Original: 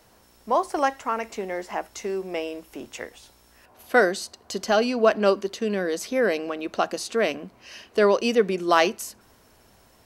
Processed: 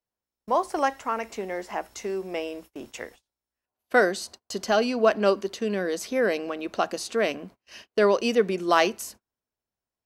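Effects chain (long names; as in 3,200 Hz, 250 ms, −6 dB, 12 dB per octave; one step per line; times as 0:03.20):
noise gate −43 dBFS, range −34 dB
level −1.5 dB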